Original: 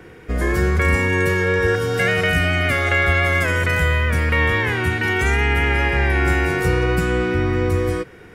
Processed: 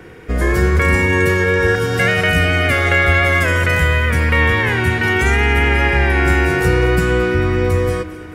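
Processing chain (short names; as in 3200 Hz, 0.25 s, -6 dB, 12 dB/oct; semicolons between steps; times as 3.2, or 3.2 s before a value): echo with dull and thin repeats by turns 0.111 s, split 1300 Hz, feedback 77%, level -13 dB; gain +3.5 dB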